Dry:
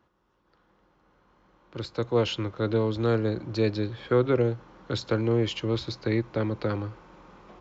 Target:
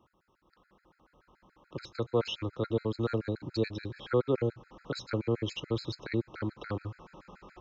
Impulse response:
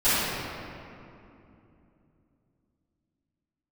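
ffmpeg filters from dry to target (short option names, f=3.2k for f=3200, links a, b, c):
-filter_complex "[0:a]asplit=2[a][b];[b]acompressor=threshold=-36dB:ratio=6,volume=2.5dB[c];[a][c]amix=inputs=2:normalize=0,afftfilt=real='re*gt(sin(2*PI*7*pts/sr)*(1-2*mod(floor(b*sr/1024/1300),2)),0)':imag='im*gt(sin(2*PI*7*pts/sr)*(1-2*mod(floor(b*sr/1024/1300),2)),0)':win_size=1024:overlap=0.75,volume=-5.5dB"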